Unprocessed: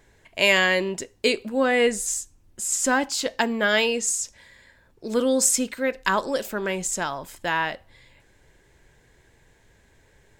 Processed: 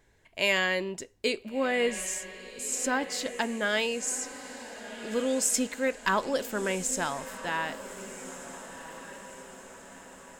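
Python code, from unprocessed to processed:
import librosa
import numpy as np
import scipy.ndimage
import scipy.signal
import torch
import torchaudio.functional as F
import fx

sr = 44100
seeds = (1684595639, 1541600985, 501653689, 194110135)

y = fx.leveller(x, sr, passes=1, at=(5.54, 7.42))
y = fx.echo_diffused(y, sr, ms=1419, feedback_pct=52, wet_db=-12.5)
y = F.gain(torch.from_numpy(y), -7.0).numpy()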